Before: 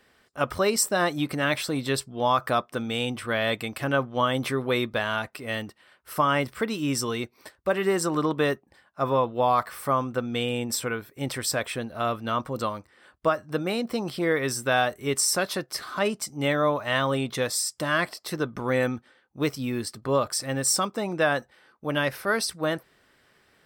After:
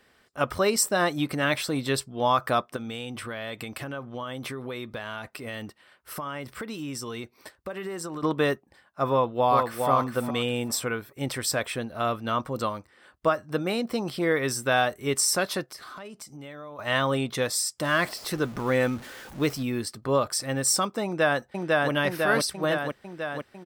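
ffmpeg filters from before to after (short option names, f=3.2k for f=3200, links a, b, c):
-filter_complex "[0:a]asettb=1/sr,asplit=3[a][b][c];[a]atrim=end=2.764[d];[b]atrim=start=2.76:end=8.23,asetpts=PTS-STARTPTS,afade=t=in:d=0.004:c=qsin,afade=t=out:st=5.466:d=0.004:c=qsin,acompressor=threshold=-31dB:ratio=6:attack=3.2:release=140:knee=1:detection=peak[e];[c]atrim=start=8.226[f];[d][e]acrossfade=d=0.004:c1=hsin:c2=qsin[g];[g][f]acrossfade=d=0.004:c1=qsin:c2=hsin,asplit=2[h][i];[i]afade=t=in:st=9.1:d=0.01,afade=t=out:st=9.89:d=0.01,aecho=0:1:410|820|1230:0.595662|0.119132|0.0238265[j];[h][j]amix=inputs=2:normalize=0,asettb=1/sr,asplit=3[k][l][m];[k]atrim=end=15.634[n];[l]atrim=start=15.63:end=16.79,asetpts=PTS-STARTPTS,afade=t=in:d=0.004:c=qsin,afade=t=out:st=1.156:d=0.004:c=qsin,acompressor=threshold=-39dB:ratio=6:attack=3.2:release=140:knee=1:detection=peak[o];[m]atrim=start=16.786[p];[n][o]acrossfade=d=0.004:c1=hsin:c2=qsin[q];[q][p]acrossfade=d=0.004:c1=qsin:c2=hsin,asettb=1/sr,asplit=3[r][s][t];[r]atrim=end=17.844[u];[s]atrim=start=17.84:end=19.63,asetpts=PTS-STARTPTS,afade=t=in:d=0.004:c=qsin,afade=t=out:st=1.786:d=0.004:c=qsin,aeval=exprs='val(0)+0.5*0.0126*sgn(val(0))':c=same[v];[t]atrim=start=19.626[w];[u][v]acrossfade=d=0.004:c1=hsin:c2=qsin[x];[x][w]acrossfade=d=0.004:c1=qsin:c2=hsin,asplit=2[y][z];[z]afade=t=in:st=21.04:d=0.01,afade=t=out:st=21.91:d=0.01,aecho=0:1:500|1000|1500|2000|2500|3000|3500|4000|4500|5000|5500|6000:0.944061|0.660843|0.46259|0.323813|0.226669|0.158668|0.111068|0.0777475|0.0544232|0.0380963|0.0266674|0.0186672[aa];[y][aa]amix=inputs=2:normalize=0"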